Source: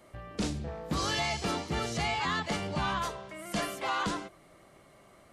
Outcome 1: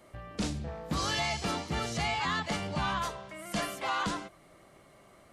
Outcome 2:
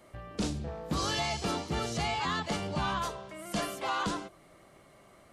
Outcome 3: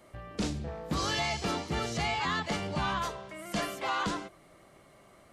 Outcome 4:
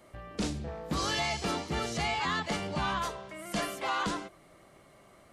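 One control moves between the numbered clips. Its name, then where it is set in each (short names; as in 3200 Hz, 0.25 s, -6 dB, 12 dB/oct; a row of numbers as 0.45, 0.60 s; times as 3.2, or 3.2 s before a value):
dynamic EQ, frequency: 390, 2000, 9700, 110 Hz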